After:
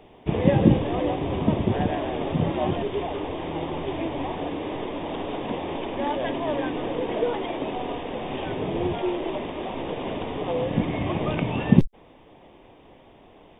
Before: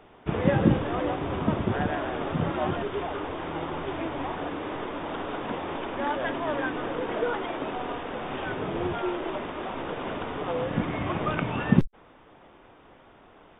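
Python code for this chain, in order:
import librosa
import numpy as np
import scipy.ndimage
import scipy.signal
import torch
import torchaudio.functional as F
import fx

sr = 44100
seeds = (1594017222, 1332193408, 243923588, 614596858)

y = fx.peak_eq(x, sr, hz=1400.0, db=-15.0, octaves=0.59)
y = y * librosa.db_to_amplitude(4.0)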